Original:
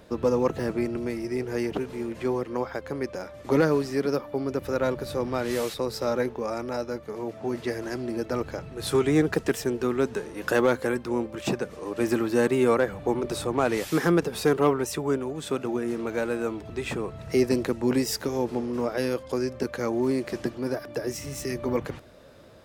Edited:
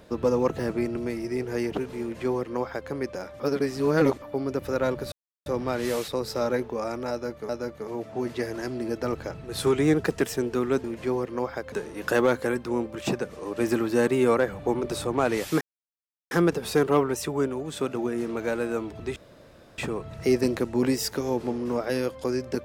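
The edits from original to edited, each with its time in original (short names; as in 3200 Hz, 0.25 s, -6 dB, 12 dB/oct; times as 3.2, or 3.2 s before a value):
2.02–2.9 copy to 10.12
3.4–4.22 reverse
5.12 insert silence 0.34 s
6.77–7.15 loop, 2 plays
14.01 insert silence 0.70 s
16.86 insert room tone 0.62 s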